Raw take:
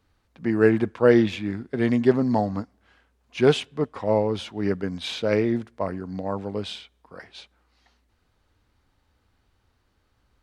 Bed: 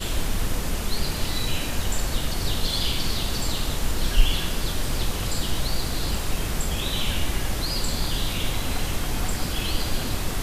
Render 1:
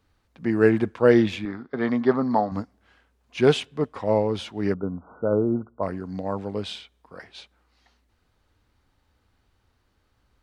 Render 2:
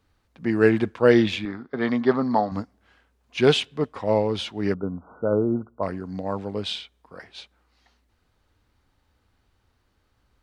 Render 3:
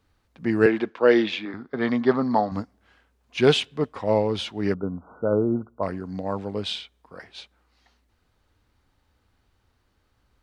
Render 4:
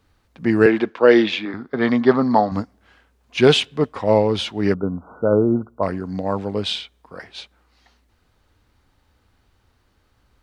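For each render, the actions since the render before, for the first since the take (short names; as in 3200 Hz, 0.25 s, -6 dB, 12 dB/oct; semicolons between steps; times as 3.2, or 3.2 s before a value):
1.45–2.52 speaker cabinet 110–4700 Hz, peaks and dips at 110 Hz -9 dB, 190 Hz -5 dB, 340 Hz -4 dB, 830 Hz +4 dB, 1200 Hz +10 dB, 2700 Hz -10 dB; 4.74–5.83 brick-wall FIR low-pass 1500 Hz
dynamic EQ 3600 Hz, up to +6 dB, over -43 dBFS, Q 0.85
0.66–1.54 three-band isolator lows -21 dB, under 230 Hz, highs -21 dB, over 5900 Hz
gain +5.5 dB; limiter -1 dBFS, peak gain reduction 2.5 dB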